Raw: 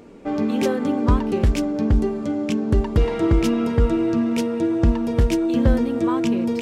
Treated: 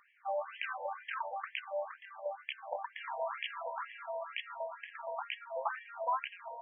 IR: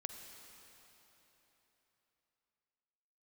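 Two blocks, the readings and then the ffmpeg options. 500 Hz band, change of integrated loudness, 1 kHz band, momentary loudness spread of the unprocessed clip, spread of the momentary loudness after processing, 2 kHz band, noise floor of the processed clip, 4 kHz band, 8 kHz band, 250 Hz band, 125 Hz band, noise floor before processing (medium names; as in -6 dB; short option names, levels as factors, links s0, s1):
-16.5 dB, -19.0 dB, -6.0 dB, 4 LU, 6 LU, -6.0 dB, -62 dBFS, -9.5 dB, under -40 dB, under -40 dB, under -40 dB, -28 dBFS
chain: -filter_complex "[0:a]bandreject=f=50:t=h:w=6,bandreject=f=100:t=h:w=6,bandreject=f=150:t=h:w=6,acrossover=split=250|2900[s0][s1][s2];[s2]acrusher=bits=4:mix=0:aa=0.000001[s3];[s0][s1][s3]amix=inputs=3:normalize=0,aeval=exprs='0.266*(abs(mod(val(0)/0.266+3,4)-2)-1)':c=same,afftfilt=real='re*between(b*sr/1024,700*pow(2400/700,0.5+0.5*sin(2*PI*2.1*pts/sr))/1.41,700*pow(2400/700,0.5+0.5*sin(2*PI*2.1*pts/sr))*1.41)':imag='im*between(b*sr/1024,700*pow(2400/700,0.5+0.5*sin(2*PI*2.1*pts/sr))/1.41,700*pow(2400/700,0.5+0.5*sin(2*PI*2.1*pts/sr))*1.41)':win_size=1024:overlap=0.75,volume=0.75"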